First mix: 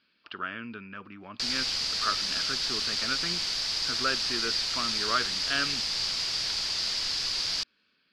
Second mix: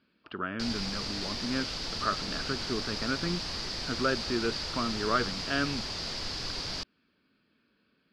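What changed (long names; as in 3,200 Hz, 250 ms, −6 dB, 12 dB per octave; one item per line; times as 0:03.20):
background: entry −0.80 s
master: add tilt shelving filter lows +8.5 dB, about 1,200 Hz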